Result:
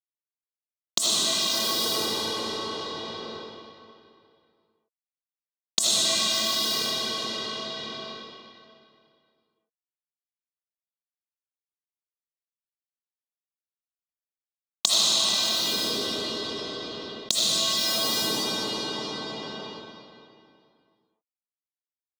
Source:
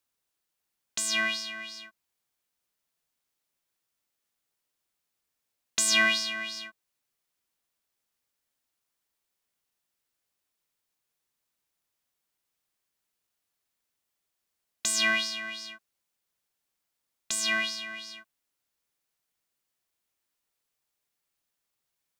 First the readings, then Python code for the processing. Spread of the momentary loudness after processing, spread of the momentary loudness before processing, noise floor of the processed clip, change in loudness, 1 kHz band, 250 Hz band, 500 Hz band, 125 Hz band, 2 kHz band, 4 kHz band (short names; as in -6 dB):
16 LU, 18 LU, under -85 dBFS, +2.5 dB, +7.5 dB, +8.5 dB, +11.5 dB, n/a, -6.0 dB, +9.5 dB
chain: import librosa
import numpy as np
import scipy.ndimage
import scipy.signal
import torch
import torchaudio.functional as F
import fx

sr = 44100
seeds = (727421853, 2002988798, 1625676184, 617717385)

y = fx.delta_hold(x, sr, step_db=-38.5)
y = fx.recorder_agc(y, sr, target_db=-18.0, rise_db_per_s=62.0, max_gain_db=30)
y = scipy.signal.sosfilt(scipy.signal.butter(2, 230.0, 'highpass', fs=sr, output='sos'), y)
y = fx.band_shelf(y, sr, hz=2000.0, db=-14.5, octaves=1.1)
y = fx.rotary_switch(y, sr, hz=7.5, then_hz=0.7, switch_at_s=10.13)
y = fx.high_shelf(y, sr, hz=7400.0, db=5.0)
y = fx.rev_freeverb(y, sr, rt60_s=2.5, hf_ratio=0.85, predelay_ms=40, drr_db=-6.5)
y = fx.env_flatten(y, sr, amount_pct=70)
y = F.gain(torch.from_numpy(y), -12.5).numpy()